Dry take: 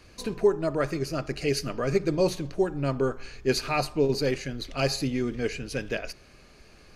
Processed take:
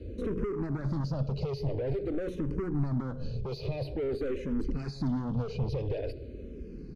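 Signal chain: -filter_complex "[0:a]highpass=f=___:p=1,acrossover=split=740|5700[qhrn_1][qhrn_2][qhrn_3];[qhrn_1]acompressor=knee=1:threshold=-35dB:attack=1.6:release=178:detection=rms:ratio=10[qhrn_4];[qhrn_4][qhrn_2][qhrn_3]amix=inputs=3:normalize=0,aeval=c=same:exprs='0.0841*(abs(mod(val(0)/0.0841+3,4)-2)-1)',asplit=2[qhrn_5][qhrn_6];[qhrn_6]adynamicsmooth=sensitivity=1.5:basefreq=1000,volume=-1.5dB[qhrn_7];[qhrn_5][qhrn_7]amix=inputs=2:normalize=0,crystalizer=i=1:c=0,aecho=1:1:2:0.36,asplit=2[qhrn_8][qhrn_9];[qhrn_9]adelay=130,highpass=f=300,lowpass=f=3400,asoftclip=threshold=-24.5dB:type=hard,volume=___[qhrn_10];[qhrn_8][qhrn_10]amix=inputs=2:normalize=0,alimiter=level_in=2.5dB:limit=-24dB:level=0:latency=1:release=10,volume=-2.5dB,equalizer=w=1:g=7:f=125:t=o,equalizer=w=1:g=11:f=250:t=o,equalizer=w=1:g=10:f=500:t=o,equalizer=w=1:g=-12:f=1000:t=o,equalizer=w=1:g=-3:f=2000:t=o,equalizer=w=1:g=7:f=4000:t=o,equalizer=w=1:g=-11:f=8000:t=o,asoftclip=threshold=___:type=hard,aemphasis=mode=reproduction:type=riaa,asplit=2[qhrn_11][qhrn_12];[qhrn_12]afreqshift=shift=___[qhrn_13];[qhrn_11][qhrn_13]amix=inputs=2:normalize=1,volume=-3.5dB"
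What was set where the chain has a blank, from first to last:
94, -23dB, -29dB, -0.48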